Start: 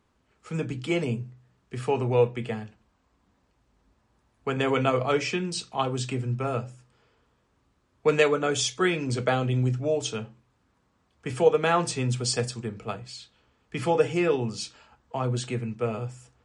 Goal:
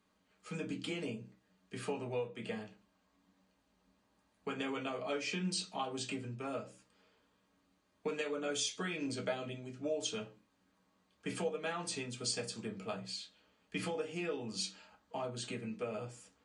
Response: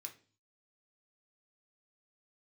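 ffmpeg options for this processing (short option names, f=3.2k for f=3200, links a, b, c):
-filter_complex "[0:a]lowpass=f=3.5k:p=1,aemphasis=mode=production:type=cd,acompressor=threshold=-30dB:ratio=6[a];[1:a]atrim=start_sample=2205,asetrate=79380,aresample=44100[b];[a][b]afir=irnorm=-1:irlink=0,volume=8.5dB"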